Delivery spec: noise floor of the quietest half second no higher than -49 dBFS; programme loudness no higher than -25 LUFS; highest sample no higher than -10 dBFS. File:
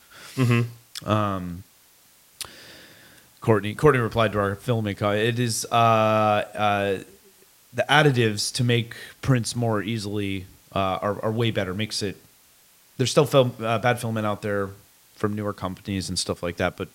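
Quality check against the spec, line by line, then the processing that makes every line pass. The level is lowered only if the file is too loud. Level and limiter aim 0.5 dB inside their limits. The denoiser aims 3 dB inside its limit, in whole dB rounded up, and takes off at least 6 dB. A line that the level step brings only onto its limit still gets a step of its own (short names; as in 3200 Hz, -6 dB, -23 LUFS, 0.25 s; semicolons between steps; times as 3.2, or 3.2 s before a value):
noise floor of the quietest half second -56 dBFS: OK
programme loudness -23.5 LUFS: fail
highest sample -2.5 dBFS: fail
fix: gain -2 dB; limiter -10.5 dBFS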